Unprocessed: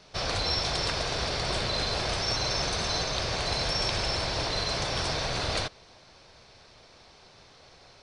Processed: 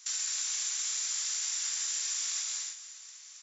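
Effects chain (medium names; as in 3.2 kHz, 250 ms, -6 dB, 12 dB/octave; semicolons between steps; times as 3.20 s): frequency inversion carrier 3.1 kHz; treble shelf 2.2 kHz +9 dB; feedback delay 554 ms, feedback 57%, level -22 dB; peak limiter -20 dBFS, peak gain reduction 7.5 dB; speed mistake 33 rpm record played at 78 rpm; high-pass 1.4 kHz 12 dB/octave; gated-style reverb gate 340 ms flat, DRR -0.5 dB; compression, threshold -27 dBFS, peak gain reduction 5 dB; trim -3 dB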